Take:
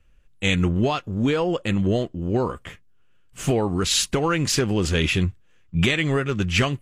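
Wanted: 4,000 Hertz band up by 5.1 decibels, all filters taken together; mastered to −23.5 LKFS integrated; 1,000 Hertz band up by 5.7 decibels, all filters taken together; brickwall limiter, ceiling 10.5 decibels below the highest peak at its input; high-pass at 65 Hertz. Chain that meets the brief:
high-pass filter 65 Hz
parametric band 1,000 Hz +7 dB
parametric band 4,000 Hz +6 dB
level +0.5 dB
brickwall limiter −13 dBFS

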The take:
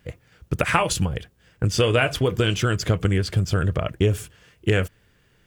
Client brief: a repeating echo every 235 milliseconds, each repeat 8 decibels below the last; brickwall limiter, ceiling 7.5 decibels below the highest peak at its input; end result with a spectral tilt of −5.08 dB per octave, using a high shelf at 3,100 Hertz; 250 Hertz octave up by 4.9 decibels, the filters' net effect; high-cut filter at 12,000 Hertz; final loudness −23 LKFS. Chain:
low-pass filter 12,000 Hz
parametric band 250 Hz +7 dB
high-shelf EQ 3,100 Hz +4 dB
brickwall limiter −10.5 dBFS
repeating echo 235 ms, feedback 40%, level −8 dB
level −1 dB

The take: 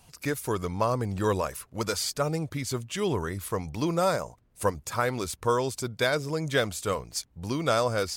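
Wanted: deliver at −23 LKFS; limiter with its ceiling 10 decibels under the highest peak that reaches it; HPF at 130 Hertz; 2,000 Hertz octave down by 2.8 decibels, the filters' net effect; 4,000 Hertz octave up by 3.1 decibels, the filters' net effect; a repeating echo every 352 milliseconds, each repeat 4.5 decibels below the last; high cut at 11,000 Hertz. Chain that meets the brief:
high-pass filter 130 Hz
low-pass filter 11,000 Hz
parametric band 2,000 Hz −5 dB
parametric band 4,000 Hz +5 dB
brickwall limiter −20 dBFS
repeating echo 352 ms, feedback 60%, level −4.5 dB
level +7.5 dB

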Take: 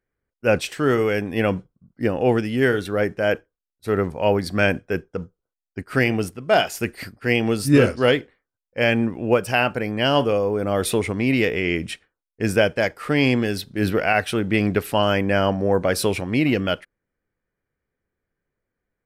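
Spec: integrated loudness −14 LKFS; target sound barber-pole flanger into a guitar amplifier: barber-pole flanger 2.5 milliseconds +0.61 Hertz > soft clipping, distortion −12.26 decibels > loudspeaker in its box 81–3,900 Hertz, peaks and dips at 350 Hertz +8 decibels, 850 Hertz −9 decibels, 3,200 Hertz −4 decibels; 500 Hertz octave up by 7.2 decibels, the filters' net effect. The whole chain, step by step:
parametric band 500 Hz +7 dB
barber-pole flanger 2.5 ms +0.61 Hz
soft clipping −14.5 dBFS
loudspeaker in its box 81–3,900 Hz, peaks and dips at 350 Hz +8 dB, 850 Hz −9 dB, 3,200 Hz −4 dB
level +8 dB

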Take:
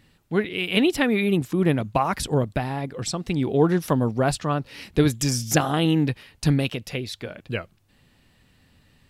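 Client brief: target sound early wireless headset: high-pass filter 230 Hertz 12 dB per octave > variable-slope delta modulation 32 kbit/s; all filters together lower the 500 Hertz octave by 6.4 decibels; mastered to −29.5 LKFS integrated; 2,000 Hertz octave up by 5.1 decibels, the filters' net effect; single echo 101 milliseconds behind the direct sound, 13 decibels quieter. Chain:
high-pass filter 230 Hz 12 dB per octave
parametric band 500 Hz −8.5 dB
parametric band 2,000 Hz +7 dB
single-tap delay 101 ms −13 dB
variable-slope delta modulation 32 kbit/s
level −2 dB

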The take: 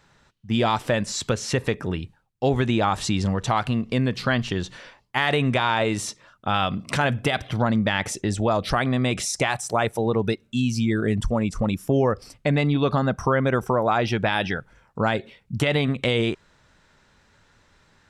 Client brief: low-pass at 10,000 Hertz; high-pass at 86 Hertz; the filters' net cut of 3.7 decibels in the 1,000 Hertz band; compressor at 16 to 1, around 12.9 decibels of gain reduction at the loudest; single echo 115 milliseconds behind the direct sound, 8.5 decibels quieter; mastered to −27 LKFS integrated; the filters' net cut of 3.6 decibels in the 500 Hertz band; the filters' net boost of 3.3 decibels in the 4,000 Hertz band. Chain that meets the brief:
high-pass filter 86 Hz
low-pass filter 10,000 Hz
parametric band 500 Hz −3.5 dB
parametric band 1,000 Hz −4 dB
parametric band 4,000 Hz +4.5 dB
downward compressor 16 to 1, threshold −31 dBFS
single-tap delay 115 ms −8.5 dB
level +8.5 dB

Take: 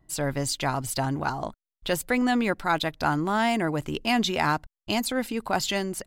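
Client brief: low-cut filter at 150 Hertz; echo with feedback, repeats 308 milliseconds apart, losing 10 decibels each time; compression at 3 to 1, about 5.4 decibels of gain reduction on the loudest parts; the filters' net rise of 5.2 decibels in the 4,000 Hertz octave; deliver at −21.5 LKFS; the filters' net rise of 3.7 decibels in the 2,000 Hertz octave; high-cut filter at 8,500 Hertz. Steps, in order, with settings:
high-pass filter 150 Hz
low-pass filter 8,500 Hz
parametric band 2,000 Hz +3.5 dB
parametric band 4,000 Hz +5.5 dB
downward compressor 3 to 1, threshold −25 dBFS
repeating echo 308 ms, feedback 32%, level −10 dB
level +7 dB

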